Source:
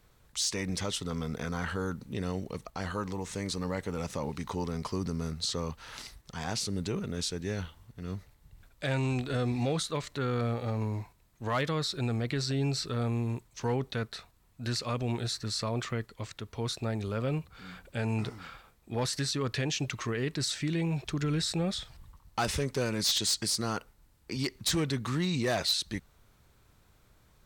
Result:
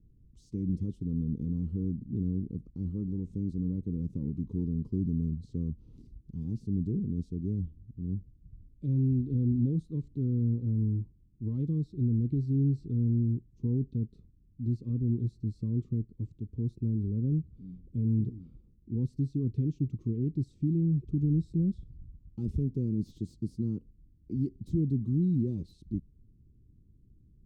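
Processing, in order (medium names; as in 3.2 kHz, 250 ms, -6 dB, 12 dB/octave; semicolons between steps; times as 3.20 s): inverse Chebyshev low-pass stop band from 620 Hz, stop band 40 dB; trim +4.5 dB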